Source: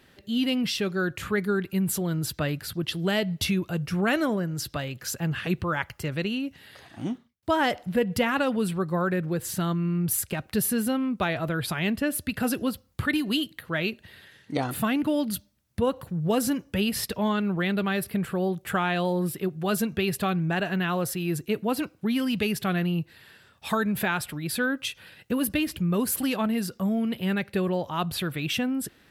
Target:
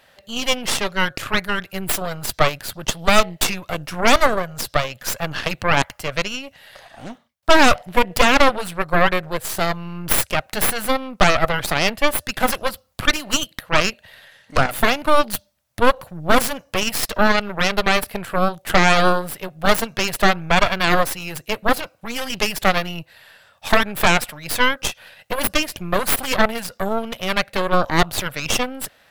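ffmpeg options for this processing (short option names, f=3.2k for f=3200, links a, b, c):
-af "lowshelf=f=460:t=q:w=3:g=-8,aeval=exprs='0.335*(cos(1*acos(clip(val(0)/0.335,-1,1)))-cos(1*PI/2))+0.168*(cos(6*acos(clip(val(0)/0.335,-1,1)))-cos(6*PI/2))':c=same,volume=4.5dB"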